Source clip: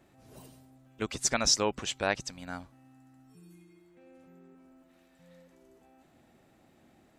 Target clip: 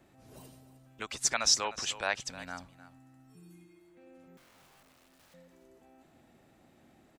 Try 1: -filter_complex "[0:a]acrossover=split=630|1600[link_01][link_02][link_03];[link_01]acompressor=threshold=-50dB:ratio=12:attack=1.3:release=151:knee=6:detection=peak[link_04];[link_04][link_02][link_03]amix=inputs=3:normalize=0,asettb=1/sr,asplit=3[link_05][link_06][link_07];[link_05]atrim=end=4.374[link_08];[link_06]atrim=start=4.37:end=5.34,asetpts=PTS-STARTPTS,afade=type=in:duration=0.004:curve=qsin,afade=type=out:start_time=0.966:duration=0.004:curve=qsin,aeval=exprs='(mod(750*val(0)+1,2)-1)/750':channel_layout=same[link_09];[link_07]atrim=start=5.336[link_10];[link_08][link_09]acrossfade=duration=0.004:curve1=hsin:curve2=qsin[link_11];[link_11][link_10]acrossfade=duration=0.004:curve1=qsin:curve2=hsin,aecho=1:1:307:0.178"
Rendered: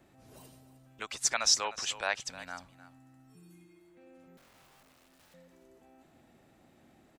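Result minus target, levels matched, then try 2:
downward compressor: peak gain reduction +6.5 dB
-filter_complex "[0:a]acrossover=split=630|1600[link_01][link_02][link_03];[link_01]acompressor=threshold=-43dB:ratio=12:attack=1.3:release=151:knee=6:detection=peak[link_04];[link_04][link_02][link_03]amix=inputs=3:normalize=0,asettb=1/sr,asplit=3[link_05][link_06][link_07];[link_05]atrim=end=4.374[link_08];[link_06]atrim=start=4.37:end=5.34,asetpts=PTS-STARTPTS,afade=type=in:duration=0.004:curve=qsin,afade=type=out:start_time=0.966:duration=0.004:curve=qsin,aeval=exprs='(mod(750*val(0)+1,2)-1)/750':channel_layout=same[link_09];[link_07]atrim=start=5.336[link_10];[link_08][link_09]acrossfade=duration=0.004:curve1=hsin:curve2=qsin[link_11];[link_11][link_10]acrossfade=duration=0.004:curve1=qsin:curve2=hsin,aecho=1:1:307:0.178"

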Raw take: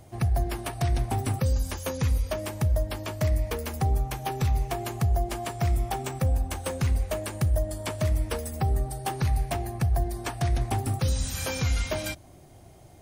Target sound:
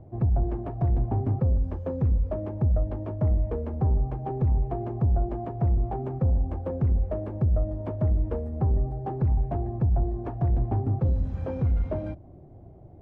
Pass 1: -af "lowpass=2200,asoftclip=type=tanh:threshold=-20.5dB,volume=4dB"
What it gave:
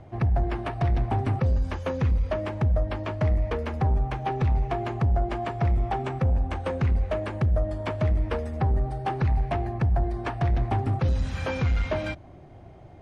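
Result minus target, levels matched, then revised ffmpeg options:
2,000 Hz band +17.5 dB
-af "lowpass=550,asoftclip=type=tanh:threshold=-20.5dB,volume=4dB"

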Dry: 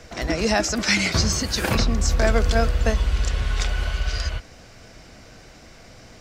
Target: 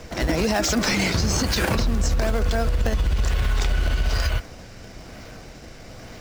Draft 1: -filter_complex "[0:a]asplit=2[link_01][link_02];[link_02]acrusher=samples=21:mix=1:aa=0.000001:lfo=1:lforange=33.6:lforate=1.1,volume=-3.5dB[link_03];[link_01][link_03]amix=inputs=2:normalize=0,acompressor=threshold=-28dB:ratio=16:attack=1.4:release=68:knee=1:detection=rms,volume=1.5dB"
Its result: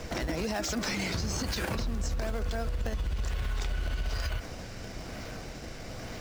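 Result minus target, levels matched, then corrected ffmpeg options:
downward compressor: peak gain reduction +10.5 dB
-filter_complex "[0:a]asplit=2[link_01][link_02];[link_02]acrusher=samples=21:mix=1:aa=0.000001:lfo=1:lforange=33.6:lforate=1.1,volume=-3.5dB[link_03];[link_01][link_03]amix=inputs=2:normalize=0,acompressor=threshold=-17dB:ratio=16:attack=1.4:release=68:knee=1:detection=rms,volume=1.5dB"

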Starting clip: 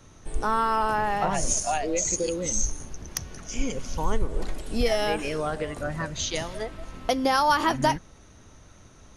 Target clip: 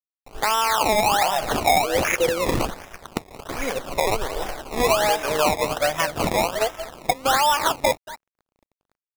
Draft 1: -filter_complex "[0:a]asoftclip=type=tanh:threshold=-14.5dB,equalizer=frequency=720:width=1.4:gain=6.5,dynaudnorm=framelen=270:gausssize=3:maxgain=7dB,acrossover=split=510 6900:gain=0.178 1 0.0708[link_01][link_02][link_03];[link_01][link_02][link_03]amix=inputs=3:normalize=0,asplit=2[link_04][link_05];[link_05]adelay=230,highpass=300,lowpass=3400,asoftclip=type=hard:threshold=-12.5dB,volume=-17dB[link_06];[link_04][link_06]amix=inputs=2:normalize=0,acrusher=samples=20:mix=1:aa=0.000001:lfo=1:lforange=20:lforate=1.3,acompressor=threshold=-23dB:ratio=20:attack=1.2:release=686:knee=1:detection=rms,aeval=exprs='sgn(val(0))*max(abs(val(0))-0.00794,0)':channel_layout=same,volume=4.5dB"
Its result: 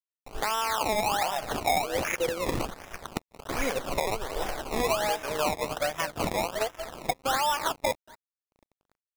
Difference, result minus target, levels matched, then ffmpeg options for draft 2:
downward compressor: peak gain reduction +6.5 dB
-filter_complex "[0:a]asoftclip=type=tanh:threshold=-14.5dB,equalizer=frequency=720:width=1.4:gain=6.5,dynaudnorm=framelen=270:gausssize=3:maxgain=7dB,acrossover=split=510 6900:gain=0.178 1 0.0708[link_01][link_02][link_03];[link_01][link_02][link_03]amix=inputs=3:normalize=0,asplit=2[link_04][link_05];[link_05]adelay=230,highpass=300,lowpass=3400,asoftclip=type=hard:threshold=-12.5dB,volume=-17dB[link_06];[link_04][link_06]amix=inputs=2:normalize=0,acrusher=samples=20:mix=1:aa=0.000001:lfo=1:lforange=20:lforate=1.3,acompressor=threshold=-16dB:ratio=20:attack=1.2:release=686:knee=1:detection=rms,aeval=exprs='sgn(val(0))*max(abs(val(0))-0.00794,0)':channel_layout=same,volume=4.5dB"

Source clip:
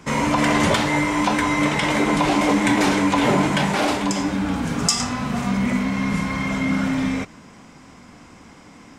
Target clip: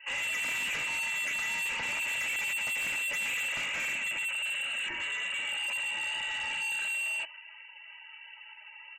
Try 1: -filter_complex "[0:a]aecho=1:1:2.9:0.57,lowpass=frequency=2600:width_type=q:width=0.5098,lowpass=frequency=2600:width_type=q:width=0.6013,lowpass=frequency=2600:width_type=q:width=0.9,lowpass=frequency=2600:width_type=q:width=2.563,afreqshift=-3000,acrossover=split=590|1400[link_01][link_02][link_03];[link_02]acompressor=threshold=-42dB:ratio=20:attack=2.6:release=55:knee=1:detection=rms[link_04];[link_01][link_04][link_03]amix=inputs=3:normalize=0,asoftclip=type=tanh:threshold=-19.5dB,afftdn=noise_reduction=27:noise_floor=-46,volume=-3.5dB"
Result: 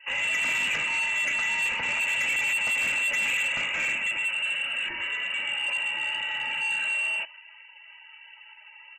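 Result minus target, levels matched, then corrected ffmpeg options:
soft clipping: distortion −5 dB
-filter_complex "[0:a]aecho=1:1:2.9:0.57,lowpass=frequency=2600:width_type=q:width=0.5098,lowpass=frequency=2600:width_type=q:width=0.6013,lowpass=frequency=2600:width_type=q:width=0.9,lowpass=frequency=2600:width_type=q:width=2.563,afreqshift=-3000,acrossover=split=590|1400[link_01][link_02][link_03];[link_02]acompressor=threshold=-42dB:ratio=20:attack=2.6:release=55:knee=1:detection=rms[link_04];[link_01][link_04][link_03]amix=inputs=3:normalize=0,asoftclip=type=tanh:threshold=-27.5dB,afftdn=noise_reduction=27:noise_floor=-46,volume=-3.5dB"

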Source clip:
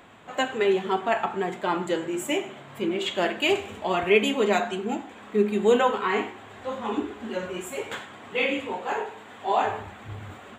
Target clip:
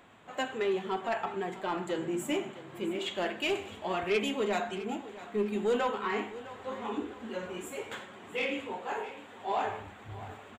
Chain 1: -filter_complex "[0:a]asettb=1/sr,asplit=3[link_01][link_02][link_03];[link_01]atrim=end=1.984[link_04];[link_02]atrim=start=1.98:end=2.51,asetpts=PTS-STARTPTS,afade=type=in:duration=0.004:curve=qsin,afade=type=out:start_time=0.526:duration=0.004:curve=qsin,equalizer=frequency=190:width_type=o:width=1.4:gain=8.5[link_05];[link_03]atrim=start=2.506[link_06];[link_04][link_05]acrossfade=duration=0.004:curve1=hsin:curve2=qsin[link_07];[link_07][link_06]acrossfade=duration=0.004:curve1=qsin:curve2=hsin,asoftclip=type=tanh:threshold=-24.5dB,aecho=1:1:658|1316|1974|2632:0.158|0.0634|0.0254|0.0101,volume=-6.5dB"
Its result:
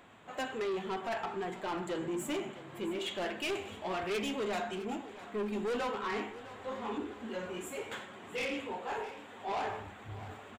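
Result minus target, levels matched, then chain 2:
soft clipping: distortion +9 dB
-filter_complex "[0:a]asettb=1/sr,asplit=3[link_01][link_02][link_03];[link_01]atrim=end=1.984[link_04];[link_02]atrim=start=1.98:end=2.51,asetpts=PTS-STARTPTS,afade=type=in:duration=0.004:curve=qsin,afade=type=out:start_time=0.526:duration=0.004:curve=qsin,equalizer=frequency=190:width_type=o:width=1.4:gain=8.5[link_05];[link_03]atrim=start=2.506[link_06];[link_04][link_05]acrossfade=duration=0.004:curve1=hsin:curve2=qsin[link_07];[link_07][link_06]acrossfade=duration=0.004:curve1=qsin:curve2=hsin,asoftclip=type=tanh:threshold=-15dB,aecho=1:1:658|1316|1974|2632:0.158|0.0634|0.0254|0.0101,volume=-6.5dB"

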